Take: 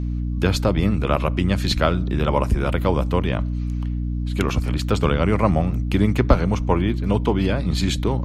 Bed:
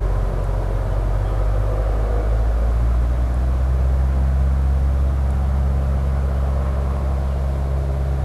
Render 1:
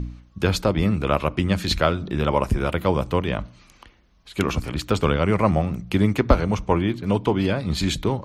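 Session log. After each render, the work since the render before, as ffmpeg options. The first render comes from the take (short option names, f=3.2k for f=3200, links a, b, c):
-af "bandreject=f=60:t=h:w=4,bandreject=f=120:t=h:w=4,bandreject=f=180:t=h:w=4,bandreject=f=240:t=h:w=4,bandreject=f=300:t=h:w=4"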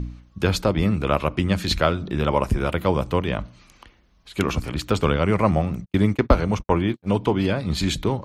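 -filter_complex "[0:a]asplit=3[a][b][c];[a]afade=t=out:st=5.84:d=0.02[d];[b]agate=range=-52dB:threshold=-28dB:ratio=16:release=100:detection=peak,afade=t=in:st=5.84:d=0.02,afade=t=out:st=7.13:d=0.02[e];[c]afade=t=in:st=7.13:d=0.02[f];[d][e][f]amix=inputs=3:normalize=0"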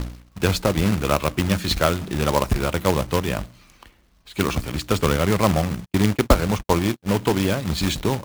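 -af "acrusher=bits=2:mode=log:mix=0:aa=0.000001"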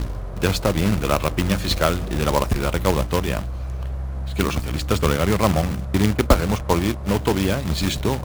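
-filter_complex "[1:a]volume=-10dB[a];[0:a][a]amix=inputs=2:normalize=0"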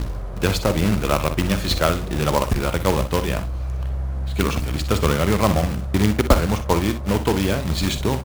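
-af "aecho=1:1:48|61:0.168|0.251"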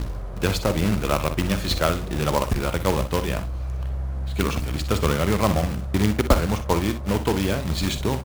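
-af "volume=-2.5dB"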